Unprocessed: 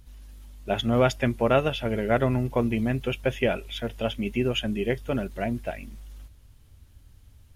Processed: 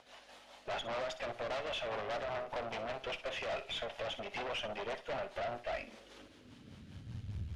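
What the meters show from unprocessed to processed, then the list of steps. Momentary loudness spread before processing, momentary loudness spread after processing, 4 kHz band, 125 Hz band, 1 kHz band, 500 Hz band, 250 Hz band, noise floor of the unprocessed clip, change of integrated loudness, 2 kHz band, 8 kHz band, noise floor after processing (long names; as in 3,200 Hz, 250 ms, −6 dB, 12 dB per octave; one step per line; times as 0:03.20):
11 LU, 17 LU, −8.0 dB, −19.5 dB, −9.0 dB, −13.0 dB, −24.5 dB, −54 dBFS, −13.5 dB, −9.0 dB, −10.0 dB, −59 dBFS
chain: in parallel at −11 dB: sine wavefolder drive 17 dB, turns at −9.5 dBFS
on the sum: downward compressor, threshold −29 dBFS, peak gain reduction 14 dB
parametric band 360 Hz −3 dB 0.74 octaves
high-pass filter sweep 670 Hz → 78 Hz, 0:05.72–0:07.54
rotating-speaker cabinet horn 5 Hz
tube saturation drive 37 dB, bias 0.7
low-pass filter 4,300 Hz 12 dB per octave
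on a send: flutter between parallel walls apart 10.5 metres, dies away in 0.28 s
on the sum: level +2 dB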